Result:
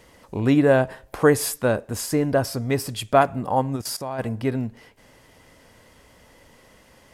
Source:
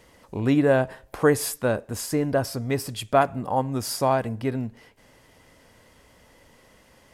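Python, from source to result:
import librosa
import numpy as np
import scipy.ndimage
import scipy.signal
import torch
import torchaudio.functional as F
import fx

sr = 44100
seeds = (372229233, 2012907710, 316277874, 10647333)

y = fx.level_steps(x, sr, step_db=16, at=(3.75, 4.18), fade=0.02)
y = y * 10.0 ** (2.5 / 20.0)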